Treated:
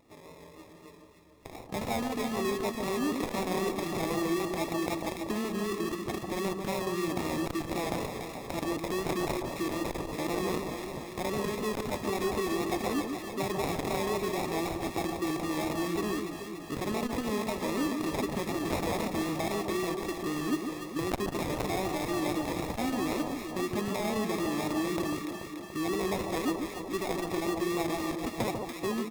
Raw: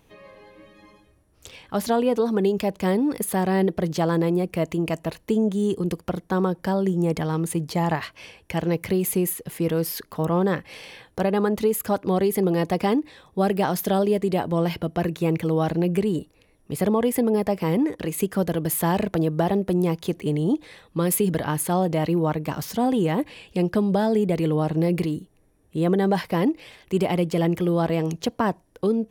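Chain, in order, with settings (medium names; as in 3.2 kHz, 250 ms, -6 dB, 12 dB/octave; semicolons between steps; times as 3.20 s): local Wiener filter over 9 samples; high-pass 350 Hz 6 dB/octave; peaking EQ 540 Hz -9 dB 1.6 oct; comb 3 ms, depth 68%; in parallel at -1.5 dB: compressor with a negative ratio -36 dBFS, ratio -1; on the sum: sample-rate reducer 1.5 kHz, jitter 0%; vibrato 3.9 Hz 50 cents; on a send: echo whose repeats swap between lows and highs 144 ms, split 1.2 kHz, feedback 79%, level -5 dB; on the sum: transformer saturation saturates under 410 Hz; trim -5 dB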